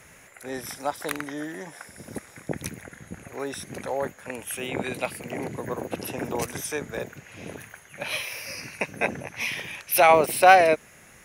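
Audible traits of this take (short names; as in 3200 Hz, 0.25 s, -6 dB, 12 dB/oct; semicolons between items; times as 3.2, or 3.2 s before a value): noise floor -52 dBFS; spectral tilt -3.5 dB/oct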